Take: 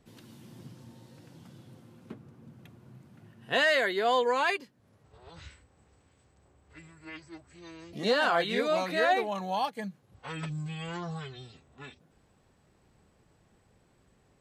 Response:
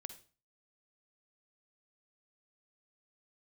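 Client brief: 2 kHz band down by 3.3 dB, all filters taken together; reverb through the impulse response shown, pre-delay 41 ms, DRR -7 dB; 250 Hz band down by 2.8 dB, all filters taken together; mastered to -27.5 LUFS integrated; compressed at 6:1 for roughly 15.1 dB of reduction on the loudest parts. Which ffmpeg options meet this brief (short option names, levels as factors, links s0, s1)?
-filter_complex "[0:a]equalizer=f=250:t=o:g=-4,equalizer=f=2000:t=o:g=-4,acompressor=threshold=0.0112:ratio=6,asplit=2[s0][s1];[1:a]atrim=start_sample=2205,adelay=41[s2];[s1][s2]afir=irnorm=-1:irlink=0,volume=3.76[s3];[s0][s3]amix=inputs=2:normalize=0,volume=3.16"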